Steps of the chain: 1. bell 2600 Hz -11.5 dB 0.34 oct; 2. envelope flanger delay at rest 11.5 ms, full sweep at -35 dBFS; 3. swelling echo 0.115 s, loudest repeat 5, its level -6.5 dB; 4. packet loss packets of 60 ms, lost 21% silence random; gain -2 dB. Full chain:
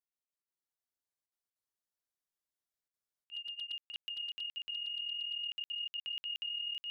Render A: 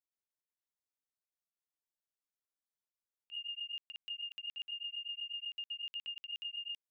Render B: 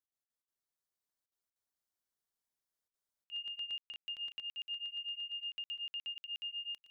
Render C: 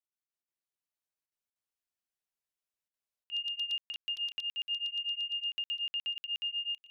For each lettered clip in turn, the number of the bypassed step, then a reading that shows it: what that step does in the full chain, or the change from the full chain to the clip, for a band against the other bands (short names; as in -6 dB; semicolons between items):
3, momentary loudness spread change -2 LU; 2, momentary loudness spread change -3 LU; 1, momentary loudness spread change -3 LU